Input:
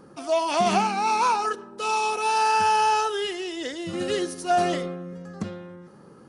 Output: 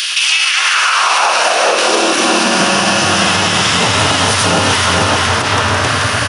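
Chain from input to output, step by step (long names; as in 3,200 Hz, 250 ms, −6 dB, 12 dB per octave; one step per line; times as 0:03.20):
compressor on every frequency bin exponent 0.4
flanger 1.2 Hz, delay 3.9 ms, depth 6.1 ms, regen +79%
dynamic equaliser 870 Hz, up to −4 dB, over −31 dBFS, Q 0.85
pitch-shifted copies added −12 semitones −17 dB
echo with shifted repeats 165 ms, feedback 45%, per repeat +120 Hz, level −7 dB
gate on every frequency bin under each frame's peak −10 dB weak
single-tap delay 432 ms −5.5 dB
downward compressor, threshold −34 dBFS, peak gain reduction 11 dB
high-pass filter sweep 3,100 Hz → 100 Hz, 0:00.11–0:03.18
boost into a limiter +26 dB
level −1 dB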